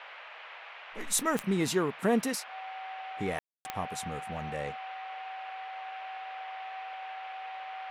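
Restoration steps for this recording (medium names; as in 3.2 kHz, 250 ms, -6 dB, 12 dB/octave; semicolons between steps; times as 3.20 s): de-click; band-stop 760 Hz, Q 30; room tone fill 3.39–3.65 s; noise print and reduce 30 dB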